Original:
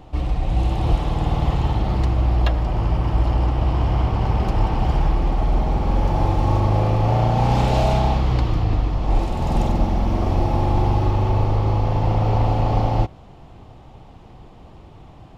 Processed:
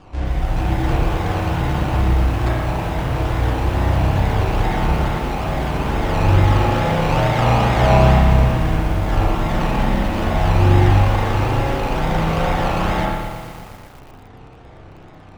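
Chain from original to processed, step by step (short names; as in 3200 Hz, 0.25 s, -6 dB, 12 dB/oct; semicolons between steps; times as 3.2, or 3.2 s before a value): low shelf 220 Hz -4.5 dB; decimation with a swept rate 21×, swing 60% 2.3 Hz; air absorption 91 m; spring tank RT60 1.1 s, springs 31/42 ms, chirp 75 ms, DRR -4.5 dB; lo-fi delay 0.118 s, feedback 80%, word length 6-bit, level -10.5 dB; gain -1 dB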